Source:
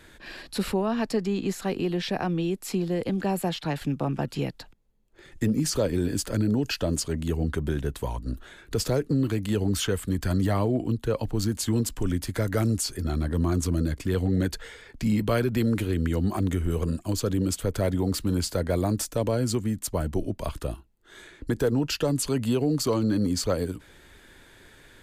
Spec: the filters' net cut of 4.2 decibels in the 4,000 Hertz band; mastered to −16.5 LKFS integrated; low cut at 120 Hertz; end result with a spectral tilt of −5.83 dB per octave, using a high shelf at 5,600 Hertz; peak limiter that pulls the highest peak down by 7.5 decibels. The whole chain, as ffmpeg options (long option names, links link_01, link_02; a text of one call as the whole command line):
ffmpeg -i in.wav -af "highpass=120,equalizer=frequency=4000:width_type=o:gain=-3,highshelf=frequency=5600:gain=-5.5,volume=13.5dB,alimiter=limit=-6dB:level=0:latency=1" out.wav